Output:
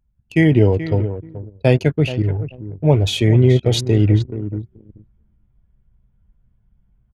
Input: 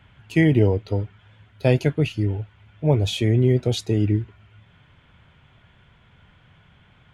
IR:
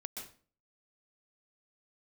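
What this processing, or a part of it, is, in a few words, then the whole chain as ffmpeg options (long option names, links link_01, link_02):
voice memo with heavy noise removal: -filter_complex "[0:a]aecho=1:1:429|858|1287:0.2|0.0519|0.0135,asettb=1/sr,asplit=3[link_01][link_02][link_03];[link_01]atrim=end=2.224[link_04];[link_02]atrim=start=2.22:end=4.21,asetpts=PTS-STARTPTS,afade=type=in:duration=0.004:curve=qsin,afade=type=out:start_time=1.986:duration=0.004:curve=qsin,adynamicequalizer=threshold=0.0251:dfrequency=250:dqfactor=0.99:tfrequency=250:tqfactor=0.99:attack=5:release=100:ratio=0.375:range=3:mode=cutabove:tftype=bell[link_05];[link_03]atrim=start=4.206[link_06];[link_04][link_05]acrossfade=duration=0.004:curve1=hsin:curve2=qsin[link_07];[link_07][link_06]acrossfade=duration=0.004:curve1=qsin:curve2=hsin,anlmdn=3.98,dynaudnorm=framelen=140:gausssize=5:maxgain=10dB"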